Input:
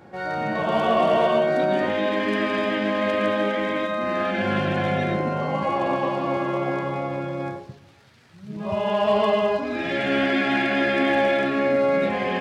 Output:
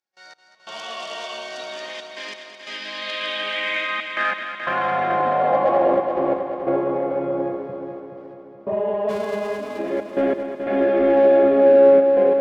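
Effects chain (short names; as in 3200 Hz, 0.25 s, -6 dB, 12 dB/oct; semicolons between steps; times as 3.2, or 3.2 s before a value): 9.08–9.78 spectral whitening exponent 0.1; AGC gain up to 8 dB; band-pass sweep 5700 Hz -> 440 Hz, 2.67–6; in parallel at -5 dB: soft clip -22 dBFS, distortion -10 dB; on the sum: step gate ".x..xxxxxxxx" 90 bpm -24 dB; on a send: multi-head echo 0.214 s, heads first and second, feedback 56%, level -10 dB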